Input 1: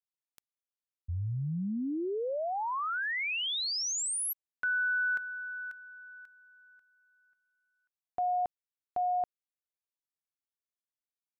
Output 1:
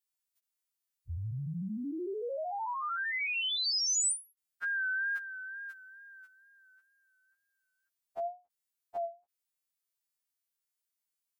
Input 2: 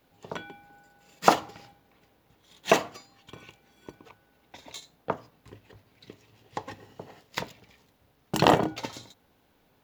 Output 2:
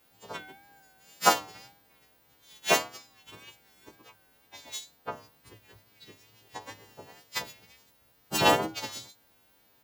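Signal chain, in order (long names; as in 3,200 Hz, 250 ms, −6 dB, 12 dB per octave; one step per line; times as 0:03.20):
every partial snapped to a pitch grid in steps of 2 semitones
tape wow and flutter 2.1 Hz 54 cents
every ending faded ahead of time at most 220 dB per second
level −3 dB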